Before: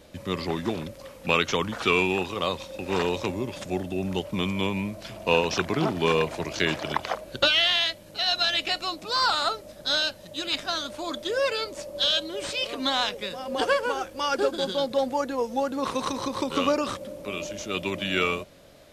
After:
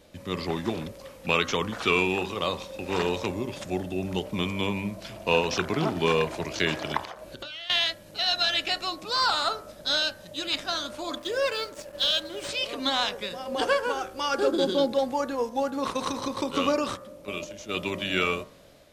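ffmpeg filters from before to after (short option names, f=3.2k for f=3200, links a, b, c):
-filter_complex "[0:a]asettb=1/sr,asplit=3[a][b][c];[a]atrim=end=7.004[d];[b]atrim=start=7:end=7.7,asetpts=PTS-STARTPTS,afade=t=in:d=0.004:c=qsin,afade=t=out:st=0.696:d=0.004:c=qsin,acompressor=threshold=-35dB:ratio=8:attack=3.2:release=140:knee=1:detection=peak[e];[c]atrim=start=7.696[f];[d][e]acrossfade=d=0.004:c1=hsin:c2=qsin[g];[g][f]acrossfade=d=0.004:c1=qsin:c2=hsin,asettb=1/sr,asplit=3[h][i][j];[h]atrim=end=11.164[k];[i]atrim=start=11.16:end=12.49,asetpts=PTS-STARTPTS,afade=t=in:d=0.004:c=qsin,afade=t=out:st=1.326:d=0.004:c=qsin,aeval=exprs='sgn(val(0))*max(abs(val(0))-0.00562,0)':c=same[l];[j]atrim=start=12.486[m];[k][l]acrossfade=d=0.004:c1=hsin:c2=qsin[n];[n][m]acrossfade=d=0.004:c1=qsin:c2=hsin,asettb=1/sr,asplit=3[o][p][q];[o]atrim=end=14.474[r];[p]atrim=start=14.47:end=14.93,asetpts=PTS-STARTPTS,afade=t=in:d=0.004:c=qsin,afade=t=out:st=0.456:d=0.004:c=qsin,equalizer=f=330:w=1.4:g=10.5[s];[q]atrim=start=14.926[t];[r][s]acrossfade=d=0.004:c1=hsin:c2=qsin[u];[u][t]acrossfade=d=0.004:c1=qsin:c2=hsin,asettb=1/sr,asplit=3[v][w][x];[v]atrim=end=15.494[y];[w]atrim=start=15.49:end=17.69,asetpts=PTS-STARTPTS,afade=t=in:d=0.004:c=qsin,afade=t=out:st=2.196:d=0.004:c=qsin,agate=range=-6dB:threshold=-34dB:ratio=16:release=100:detection=peak[z];[x]atrim=start=17.686[aa];[y][z]acrossfade=d=0.004:c1=hsin:c2=qsin[ab];[ab][aa]acrossfade=d=0.004:c1=qsin:c2=hsin,bandreject=f=64.11:t=h:w=4,bandreject=f=128.22:t=h:w=4,bandreject=f=192.33:t=h:w=4,bandreject=f=256.44:t=h:w=4,bandreject=f=320.55:t=h:w=4,bandreject=f=384.66:t=h:w=4,bandreject=f=448.77:t=h:w=4,bandreject=f=512.88:t=h:w=4,bandreject=f=576.99:t=h:w=4,bandreject=f=641.1:t=h:w=4,bandreject=f=705.21:t=h:w=4,bandreject=f=769.32:t=h:w=4,bandreject=f=833.43:t=h:w=4,bandreject=f=897.54:t=h:w=4,bandreject=f=961.65:t=h:w=4,bandreject=f=1.02576k:t=h:w=4,bandreject=f=1.08987k:t=h:w=4,bandreject=f=1.15398k:t=h:w=4,bandreject=f=1.21809k:t=h:w=4,bandreject=f=1.2822k:t=h:w=4,bandreject=f=1.34631k:t=h:w=4,bandreject=f=1.41042k:t=h:w=4,bandreject=f=1.47453k:t=h:w=4,bandreject=f=1.53864k:t=h:w=4,bandreject=f=1.60275k:t=h:w=4,bandreject=f=1.66686k:t=h:w=4,bandreject=f=1.73097k:t=h:w=4,bandreject=f=1.79508k:t=h:w=4,bandreject=f=1.85919k:t=h:w=4,bandreject=f=1.9233k:t=h:w=4,dynaudnorm=f=120:g=5:m=3dB,volume=-3.5dB"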